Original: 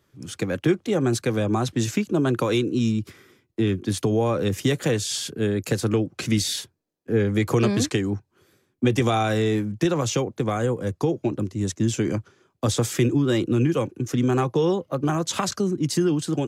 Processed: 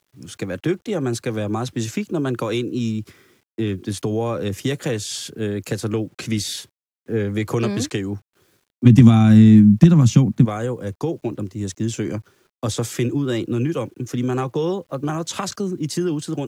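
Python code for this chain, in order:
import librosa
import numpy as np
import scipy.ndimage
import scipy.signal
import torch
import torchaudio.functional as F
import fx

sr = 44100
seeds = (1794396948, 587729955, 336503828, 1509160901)

y = fx.low_shelf_res(x, sr, hz=310.0, db=12.5, q=3.0, at=(8.85, 10.44), fade=0.02)
y = fx.quant_dither(y, sr, seeds[0], bits=10, dither='none')
y = F.gain(torch.from_numpy(y), -1.0).numpy()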